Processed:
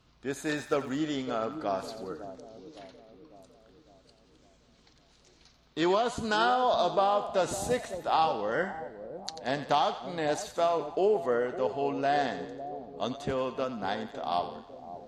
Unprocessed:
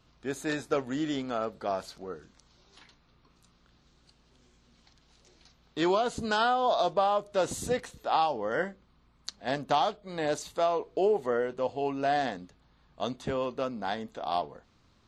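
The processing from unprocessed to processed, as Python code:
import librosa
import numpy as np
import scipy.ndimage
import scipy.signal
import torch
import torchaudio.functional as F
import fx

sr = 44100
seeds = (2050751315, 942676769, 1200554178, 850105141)

y = fx.cheby_harmonics(x, sr, harmonics=(4, 6, 8), levels_db=(-34, -32, -41), full_scale_db=-13.0)
y = fx.echo_split(y, sr, split_hz=770.0, low_ms=555, high_ms=89, feedback_pct=52, wet_db=-11.0)
y = fx.dmg_crackle(y, sr, seeds[0], per_s=fx.line((0.56, 270.0), (0.98, 60.0)), level_db=-44.0, at=(0.56, 0.98), fade=0.02)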